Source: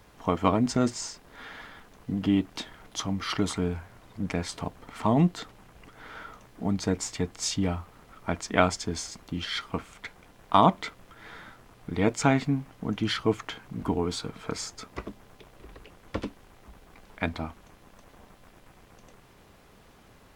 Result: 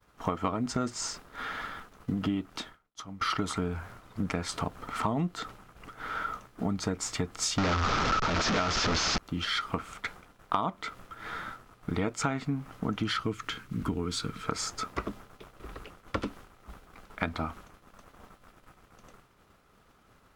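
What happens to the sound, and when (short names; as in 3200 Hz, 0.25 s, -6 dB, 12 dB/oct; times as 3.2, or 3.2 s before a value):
2.32–3.21 fade out quadratic, to -18 dB
7.58–9.18 delta modulation 32 kbps, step -13 dBFS
13.23–14.48 bell 740 Hz -12.5 dB 1.3 oct
whole clip: expander -46 dBFS; bell 1300 Hz +9.5 dB 0.31 oct; compressor 6:1, threshold -31 dBFS; gain +4 dB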